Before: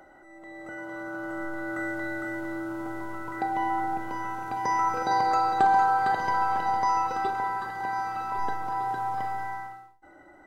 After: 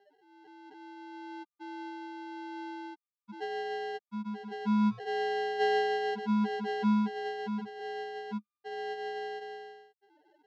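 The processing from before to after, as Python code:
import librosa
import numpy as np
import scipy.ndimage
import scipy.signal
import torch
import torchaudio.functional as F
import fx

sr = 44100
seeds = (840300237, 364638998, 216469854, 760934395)

y = fx.spec_topn(x, sr, count=1)
y = fx.sample_hold(y, sr, seeds[0], rate_hz=1200.0, jitter_pct=0)
y = fx.cabinet(y, sr, low_hz=140.0, low_slope=24, high_hz=4600.0, hz=(210.0, 590.0, 950.0, 1600.0, 2300.0), db=(9, 6, 10, 3, -3))
y = F.gain(torch.from_numpy(y), -4.0).numpy()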